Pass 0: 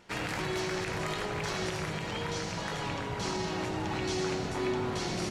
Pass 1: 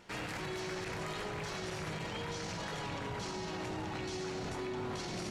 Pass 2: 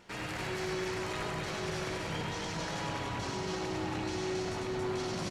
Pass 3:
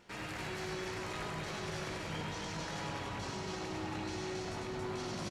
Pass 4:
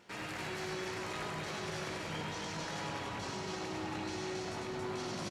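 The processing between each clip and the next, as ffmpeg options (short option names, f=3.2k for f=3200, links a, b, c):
-af "alimiter=level_in=7.5dB:limit=-24dB:level=0:latency=1:release=21,volume=-7.5dB"
-af "aecho=1:1:99.13|277:0.708|0.794"
-filter_complex "[0:a]asplit=2[a][b];[b]adelay=20,volume=-11dB[c];[a][c]amix=inputs=2:normalize=0,volume=-4dB"
-af "highpass=f=120:p=1,volume=1dB"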